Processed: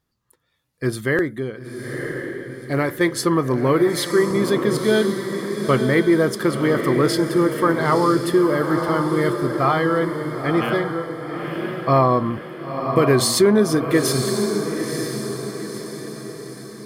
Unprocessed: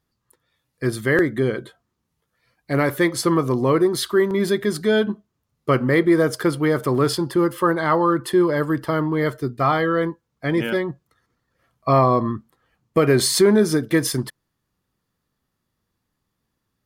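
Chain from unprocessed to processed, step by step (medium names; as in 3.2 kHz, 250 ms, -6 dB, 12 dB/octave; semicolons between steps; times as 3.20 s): 0.98–3.01 s: tremolo saw down 1.2 Hz, depth 95%; echo that smears into a reverb 971 ms, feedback 47%, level -6 dB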